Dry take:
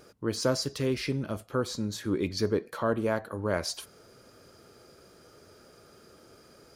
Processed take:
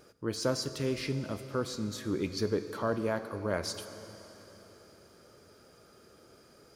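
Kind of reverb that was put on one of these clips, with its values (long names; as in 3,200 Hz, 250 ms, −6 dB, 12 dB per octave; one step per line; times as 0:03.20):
dense smooth reverb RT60 4.2 s, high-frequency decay 0.9×, DRR 10 dB
level −3.5 dB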